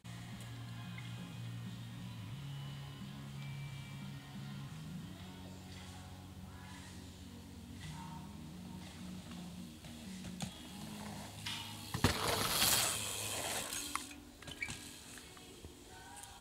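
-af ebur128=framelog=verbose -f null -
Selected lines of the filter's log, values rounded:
Integrated loudness:
  I:         -41.4 LUFS
  Threshold: -51.8 LUFS
Loudness range:
  LRA:        15.0 LU
  Threshold: -61.2 LUFS
  LRA low:   -50.4 LUFS
  LRA high:  -35.4 LUFS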